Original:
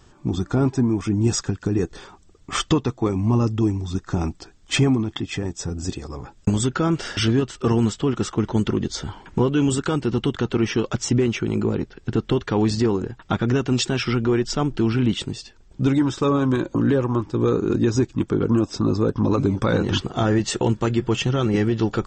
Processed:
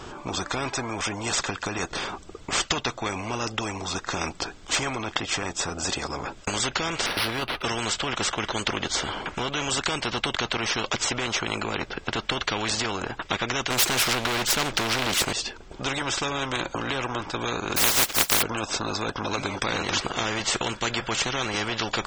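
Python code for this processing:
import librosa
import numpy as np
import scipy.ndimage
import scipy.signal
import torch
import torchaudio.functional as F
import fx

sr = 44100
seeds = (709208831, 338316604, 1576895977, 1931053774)

y = fx.resample_linear(x, sr, factor=6, at=(7.06, 7.63))
y = fx.leveller(y, sr, passes=3, at=(13.7, 15.33))
y = fx.spec_flatten(y, sr, power=0.21, at=(17.76, 18.41), fade=0.02)
y = fx.bass_treble(y, sr, bass_db=-10, treble_db=-8)
y = fx.notch(y, sr, hz=1800.0, q=12.0)
y = fx.spectral_comp(y, sr, ratio=4.0)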